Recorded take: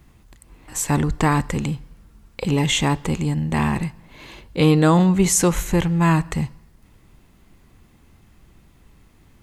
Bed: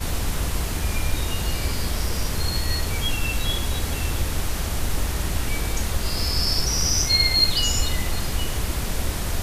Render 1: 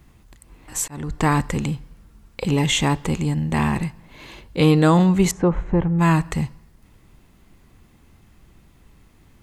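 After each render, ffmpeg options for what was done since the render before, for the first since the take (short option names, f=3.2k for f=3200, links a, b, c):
-filter_complex "[0:a]asettb=1/sr,asplit=3[a][b][c];[a]atrim=end=5.314[d];[b]atrim=start=5.31:end=5.99,asetpts=PTS-STARTPTS,afade=t=in:d=0.004:c=qsin,afade=t=out:st=0.676:d=0.004:c=qsin,lowpass=1.1k[e];[c]atrim=start=5.986[f];[d][e]acrossfade=d=0.004:c1=hsin:c2=qsin[g];[g][f]acrossfade=d=0.004:c1=qsin:c2=hsin,asplit=2[h][i];[h]atrim=end=0.88,asetpts=PTS-STARTPTS,afade=t=out:st=0.876:d=0.004:c=hsin[j];[i]atrim=start=0.88,asetpts=PTS-STARTPTS,afade=t=in:d=0.41[k];[j][k]concat=n=2:v=0:a=1"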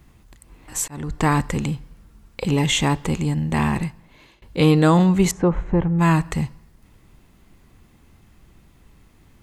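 -filter_complex "[0:a]asplit=2[a][b];[a]atrim=end=4.42,asetpts=PTS-STARTPTS,afade=t=out:st=3.83:d=0.59:silence=0.0668344[c];[b]atrim=start=4.42,asetpts=PTS-STARTPTS,afade=t=in:d=0.004:c=hsin:silence=0.0668344[d];[c][d]concat=n=2:v=0:a=1"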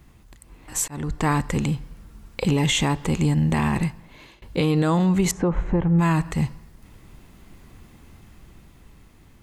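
-af "dynaudnorm=f=550:g=7:m=14dB,alimiter=limit=-11.5dB:level=0:latency=1:release=179"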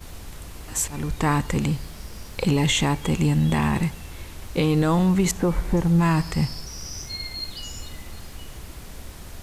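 -filter_complex "[1:a]volume=-14dB[a];[0:a][a]amix=inputs=2:normalize=0"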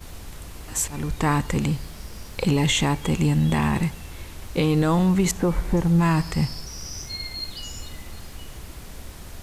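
-af anull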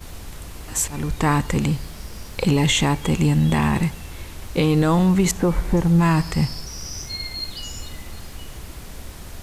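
-af "volume=2.5dB"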